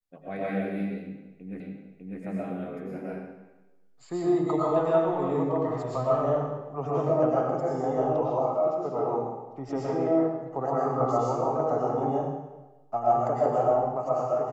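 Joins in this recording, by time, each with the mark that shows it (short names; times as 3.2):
1.6 repeat of the last 0.6 s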